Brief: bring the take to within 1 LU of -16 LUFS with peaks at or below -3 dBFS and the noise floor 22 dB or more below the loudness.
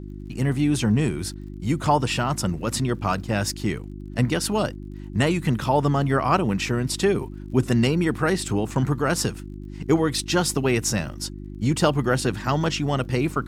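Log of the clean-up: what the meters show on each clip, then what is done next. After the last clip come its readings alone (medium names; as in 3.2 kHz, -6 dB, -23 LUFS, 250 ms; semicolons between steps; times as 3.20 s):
tick rate 38 per s; hum 50 Hz; highest harmonic 350 Hz; hum level -34 dBFS; loudness -23.5 LUFS; peak level -7.0 dBFS; loudness target -16.0 LUFS
-> de-click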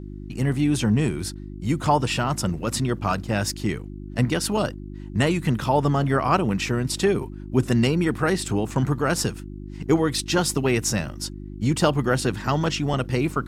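tick rate 0.074 per s; hum 50 Hz; highest harmonic 350 Hz; hum level -34 dBFS
-> de-hum 50 Hz, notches 7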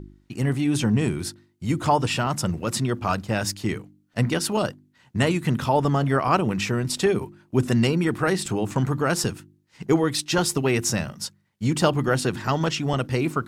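hum not found; loudness -24.0 LUFS; peak level -6.5 dBFS; loudness target -16.0 LUFS
-> trim +8 dB; peak limiter -3 dBFS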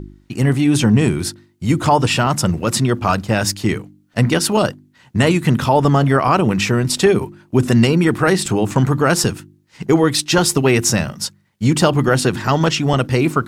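loudness -16.5 LUFS; peak level -3.0 dBFS; noise floor -56 dBFS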